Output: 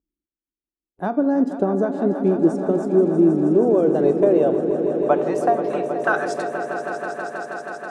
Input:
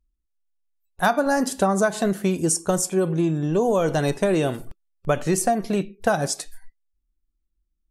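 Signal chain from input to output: band-pass sweep 320 Hz -> 2300 Hz, 3.58–6.99; swelling echo 0.16 s, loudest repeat 5, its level -12 dB; gain +8 dB

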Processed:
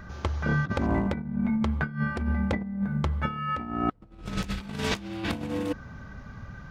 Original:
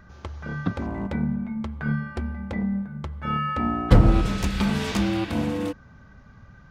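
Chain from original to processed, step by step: negative-ratio compressor -30 dBFS, ratio -0.5; gain +1 dB

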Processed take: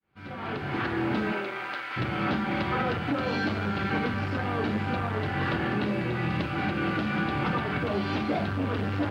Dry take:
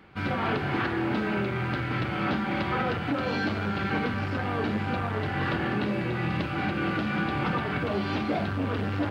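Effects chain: opening faded in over 1.01 s; 1.32–1.96 HPF 320 Hz -> 990 Hz 12 dB/oct

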